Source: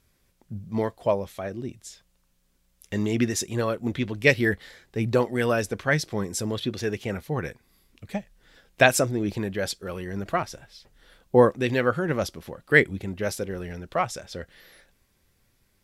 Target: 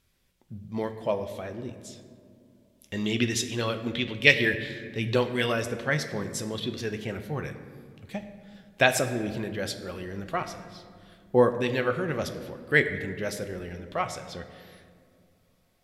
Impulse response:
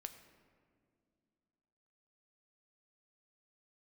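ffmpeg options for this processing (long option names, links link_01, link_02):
-filter_complex "[0:a]asetnsamples=nb_out_samples=441:pad=0,asendcmd='2.97 equalizer g 14;5.52 equalizer g 4',equalizer=frequency=3200:width=1.3:gain=5[link_01];[1:a]atrim=start_sample=2205,asetrate=40131,aresample=44100[link_02];[link_01][link_02]afir=irnorm=-1:irlink=0"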